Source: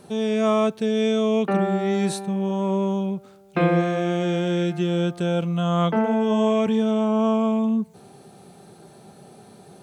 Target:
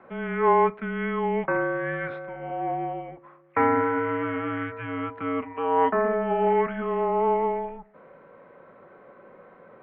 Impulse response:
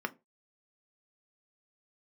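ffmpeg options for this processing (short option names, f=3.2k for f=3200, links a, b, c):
-filter_complex "[0:a]crystalizer=i=2.5:c=0,asplit=2[a][b];[1:a]atrim=start_sample=2205,highshelf=f=5.5k:g=12[c];[b][c]afir=irnorm=-1:irlink=0,volume=-0.5dB[d];[a][d]amix=inputs=2:normalize=0,highpass=f=590:t=q:w=0.5412,highpass=f=590:t=q:w=1.307,lowpass=f=2.2k:t=q:w=0.5176,lowpass=f=2.2k:t=q:w=0.7071,lowpass=f=2.2k:t=q:w=1.932,afreqshift=-240,volume=-4dB"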